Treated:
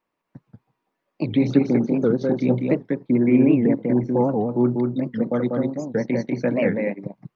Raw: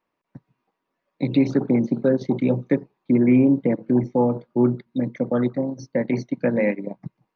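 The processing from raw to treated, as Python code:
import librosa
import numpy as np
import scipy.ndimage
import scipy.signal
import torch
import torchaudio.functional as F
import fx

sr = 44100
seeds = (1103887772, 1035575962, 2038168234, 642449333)

p1 = x + fx.echo_single(x, sr, ms=193, db=-3.5, dry=0)
p2 = fx.record_warp(p1, sr, rpm=78.0, depth_cents=250.0)
y = p2 * 10.0 ** (-1.0 / 20.0)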